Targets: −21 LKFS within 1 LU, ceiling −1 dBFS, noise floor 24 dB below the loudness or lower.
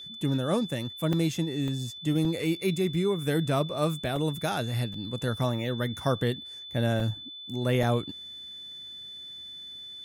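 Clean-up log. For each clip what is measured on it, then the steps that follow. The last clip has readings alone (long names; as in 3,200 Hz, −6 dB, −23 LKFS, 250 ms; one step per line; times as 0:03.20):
number of dropouts 7; longest dropout 2.7 ms; interfering tone 3,500 Hz; level of the tone −40 dBFS; integrated loudness −29.0 LKFS; sample peak −14.0 dBFS; target loudness −21.0 LKFS
→ repair the gap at 0:01.13/0:01.68/0:02.25/0:04.16/0:04.94/0:07.00/0:07.83, 2.7 ms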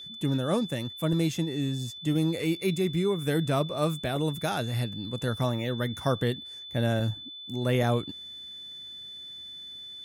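number of dropouts 0; interfering tone 3,500 Hz; level of the tone −40 dBFS
→ notch filter 3,500 Hz, Q 30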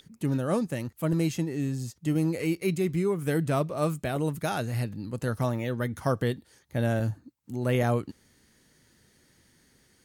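interfering tone none found; integrated loudness −29.0 LKFS; sample peak −14.0 dBFS; target loudness −21.0 LKFS
→ level +8 dB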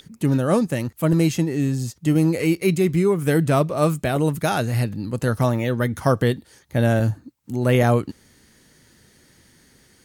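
integrated loudness −21.0 LKFS; sample peak −6.0 dBFS; background noise floor −56 dBFS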